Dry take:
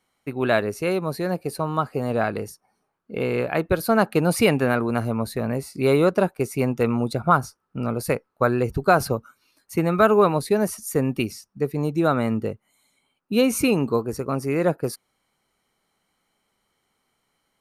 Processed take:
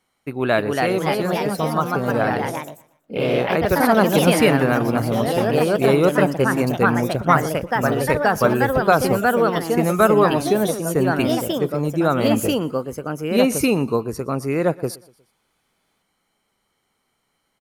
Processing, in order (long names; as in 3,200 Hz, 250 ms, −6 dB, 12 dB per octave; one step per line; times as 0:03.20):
delay with pitch and tempo change per echo 336 ms, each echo +2 semitones, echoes 3
on a send: repeating echo 120 ms, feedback 47%, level −22.5 dB
on the sum: level +1.5 dB